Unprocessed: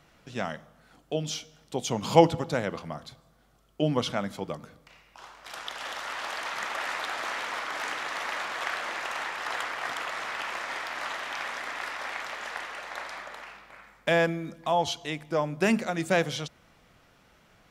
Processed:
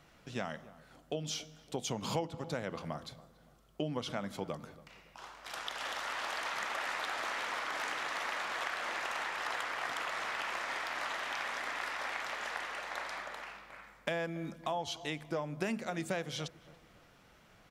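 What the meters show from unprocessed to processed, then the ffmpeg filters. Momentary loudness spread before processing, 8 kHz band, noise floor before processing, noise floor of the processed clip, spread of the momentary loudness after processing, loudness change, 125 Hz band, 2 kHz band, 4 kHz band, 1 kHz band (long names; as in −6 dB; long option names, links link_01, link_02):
14 LU, −5.0 dB, −61 dBFS, −63 dBFS, 9 LU, −7.5 dB, −9.0 dB, −5.0 dB, −5.5 dB, −7.0 dB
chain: -filter_complex "[0:a]acompressor=threshold=-31dB:ratio=5,asplit=2[link_01][link_02];[link_02]adelay=282,lowpass=frequency=1500:poles=1,volume=-19dB,asplit=2[link_03][link_04];[link_04]adelay=282,lowpass=frequency=1500:poles=1,volume=0.41,asplit=2[link_05][link_06];[link_06]adelay=282,lowpass=frequency=1500:poles=1,volume=0.41[link_07];[link_03][link_05][link_07]amix=inputs=3:normalize=0[link_08];[link_01][link_08]amix=inputs=2:normalize=0,volume=-2dB"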